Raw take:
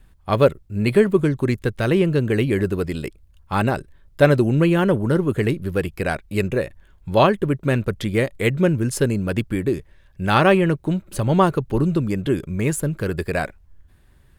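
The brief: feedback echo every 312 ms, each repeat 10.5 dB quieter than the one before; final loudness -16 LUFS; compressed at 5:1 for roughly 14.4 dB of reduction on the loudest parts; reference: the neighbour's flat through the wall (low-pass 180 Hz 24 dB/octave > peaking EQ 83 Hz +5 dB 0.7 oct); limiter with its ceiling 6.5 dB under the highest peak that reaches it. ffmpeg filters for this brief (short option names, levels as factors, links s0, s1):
-af "acompressor=threshold=0.0501:ratio=5,alimiter=limit=0.0794:level=0:latency=1,lowpass=f=180:w=0.5412,lowpass=f=180:w=1.3066,equalizer=f=83:t=o:w=0.7:g=5,aecho=1:1:312|624|936:0.299|0.0896|0.0269,volume=9.44"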